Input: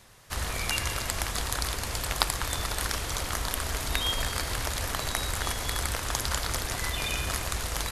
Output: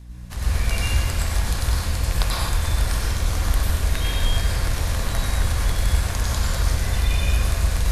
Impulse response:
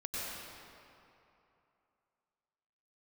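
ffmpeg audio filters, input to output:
-filter_complex "[0:a]aeval=exprs='val(0)+0.00631*(sin(2*PI*60*n/s)+sin(2*PI*2*60*n/s)/2+sin(2*PI*3*60*n/s)/3+sin(2*PI*4*60*n/s)/4+sin(2*PI*5*60*n/s)/5)':c=same,lowshelf=f=190:g=10.5,bandreject=f=1.3k:w=17[a];[1:a]atrim=start_sample=2205,afade=t=out:st=0.32:d=0.01,atrim=end_sample=14553[b];[a][b]afir=irnorm=-1:irlink=0"

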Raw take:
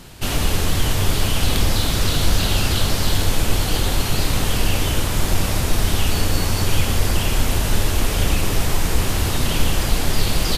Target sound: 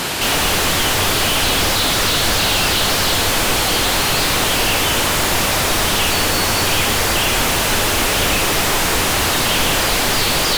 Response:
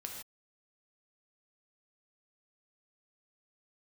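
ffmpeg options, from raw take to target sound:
-filter_complex "[0:a]crystalizer=i=1:c=0,asplit=2[a][b];[b]highpass=f=720:p=1,volume=38dB,asoftclip=type=tanh:threshold=-2.5dB[c];[a][c]amix=inputs=2:normalize=0,lowpass=f=2.8k:p=1,volume=-6dB,volume=-3dB"

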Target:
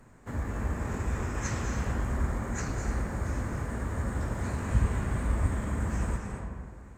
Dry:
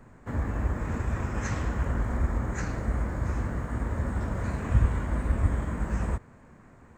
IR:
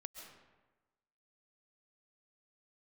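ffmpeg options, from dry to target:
-filter_complex "[0:a]highshelf=f=4.3k:g=10.5[a];[1:a]atrim=start_sample=2205,asetrate=27783,aresample=44100[b];[a][b]afir=irnorm=-1:irlink=0"

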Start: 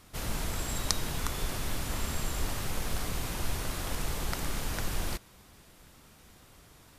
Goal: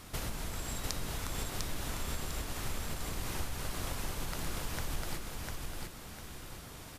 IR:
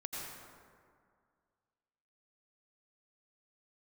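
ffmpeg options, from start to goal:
-filter_complex "[0:a]acompressor=threshold=-40dB:ratio=12,asplit=2[a][b];[b]aecho=0:1:700|1400|2100|2800:0.708|0.219|0.068|0.0211[c];[a][c]amix=inputs=2:normalize=0,volume=6dB"

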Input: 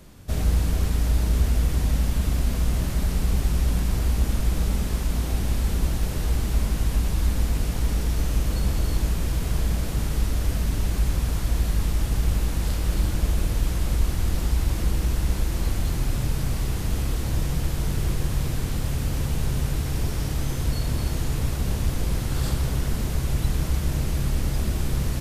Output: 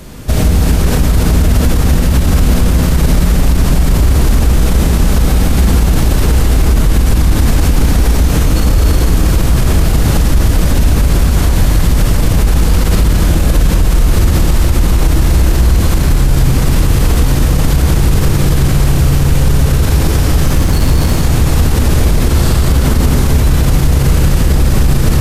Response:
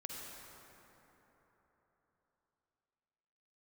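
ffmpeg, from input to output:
-filter_complex "[0:a]asettb=1/sr,asplit=3[a][b][c];[a]atrim=end=20.464[d];[b]atrim=start=20.46:end=21.12,asetpts=PTS-STARTPTS,afade=t=in:d=0.004:c=qsin,afade=t=out:st=0.656:d=0.004:c=qsin,asoftclip=type=hard:threshold=-25dB[e];[c]atrim=start=21.116[f];[d][e]acrossfade=d=0.004:c1=hsin:c2=qsin[g];[g][f]acrossfade=d=0.004:c1=qsin:c2=hsin[h];[1:a]atrim=start_sample=2205,asetrate=42336,aresample=44100[i];[h][i]afir=irnorm=-1:irlink=0,alimiter=level_in=22dB:limit=-1dB:release=50:level=0:latency=1,volume=-1dB"

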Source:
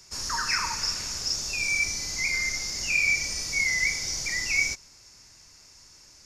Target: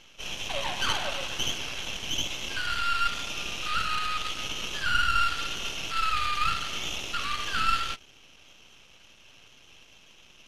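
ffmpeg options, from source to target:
-af "lowpass=f=4.1k:t=q:w=3.6,aeval=exprs='max(val(0),0)':c=same,asetrate=26328,aresample=44100"

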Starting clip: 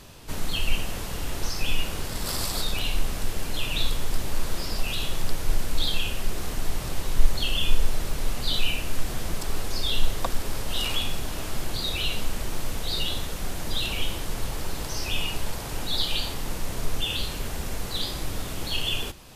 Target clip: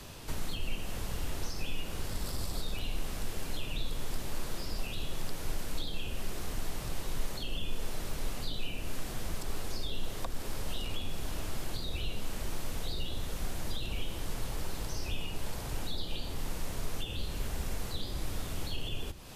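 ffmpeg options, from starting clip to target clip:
-filter_complex "[0:a]acrossover=split=120|620[a][b][c];[a]acompressor=threshold=-30dB:ratio=4[d];[b]acompressor=threshold=-45dB:ratio=4[e];[c]acompressor=threshold=-44dB:ratio=4[f];[d][e][f]amix=inputs=3:normalize=0"

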